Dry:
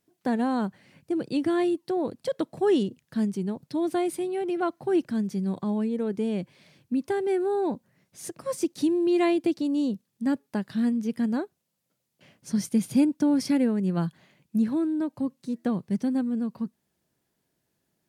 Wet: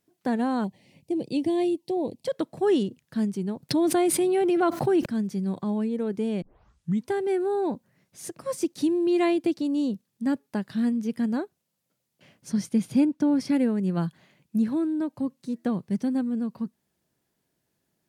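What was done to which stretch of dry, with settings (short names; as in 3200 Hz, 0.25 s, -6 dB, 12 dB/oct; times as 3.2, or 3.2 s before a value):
0.64–2.25 Butterworth band-stop 1400 Hz, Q 1.1
3.69–5.06 fast leveller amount 70%
6.42 tape start 0.68 s
12.51–13.52 high shelf 9000 Hz -> 5200 Hz -10 dB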